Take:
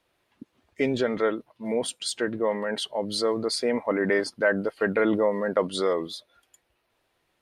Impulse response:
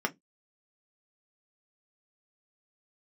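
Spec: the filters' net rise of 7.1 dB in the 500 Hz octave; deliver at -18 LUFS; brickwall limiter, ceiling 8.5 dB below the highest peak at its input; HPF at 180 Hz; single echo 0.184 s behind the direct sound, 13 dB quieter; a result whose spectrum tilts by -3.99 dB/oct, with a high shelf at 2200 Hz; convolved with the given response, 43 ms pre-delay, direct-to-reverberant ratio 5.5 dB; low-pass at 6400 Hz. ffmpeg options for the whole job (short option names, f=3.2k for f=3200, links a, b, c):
-filter_complex "[0:a]highpass=180,lowpass=6.4k,equalizer=f=500:t=o:g=8.5,highshelf=f=2.2k:g=-4,alimiter=limit=-13dB:level=0:latency=1,aecho=1:1:184:0.224,asplit=2[a][b];[1:a]atrim=start_sample=2205,adelay=43[c];[b][c]afir=irnorm=-1:irlink=0,volume=-13dB[d];[a][d]amix=inputs=2:normalize=0,volume=4.5dB"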